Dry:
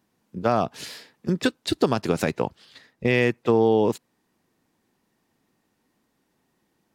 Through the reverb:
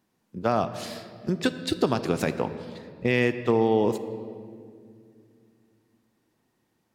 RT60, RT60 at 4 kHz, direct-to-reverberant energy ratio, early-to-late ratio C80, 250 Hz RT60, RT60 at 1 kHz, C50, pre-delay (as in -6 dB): 2.2 s, 1.4 s, 10.5 dB, 12.5 dB, 3.5 s, 1.9 s, 11.5 dB, 3 ms